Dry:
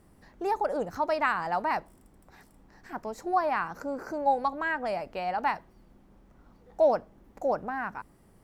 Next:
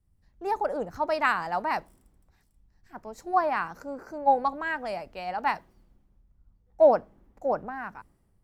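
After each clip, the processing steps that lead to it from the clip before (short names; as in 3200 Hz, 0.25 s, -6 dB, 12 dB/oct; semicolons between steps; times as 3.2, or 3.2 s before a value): three-band expander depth 70%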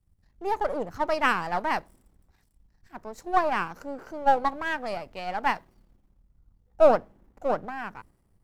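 half-wave gain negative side -7 dB; gain +3 dB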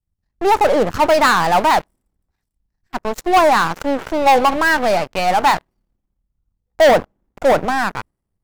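sample leveller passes 5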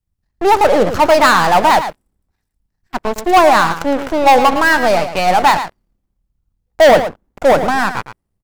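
echo 0.111 s -10.5 dB; gain +3 dB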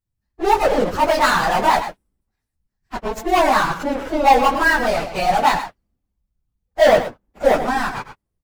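phase scrambler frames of 50 ms; gain -5.5 dB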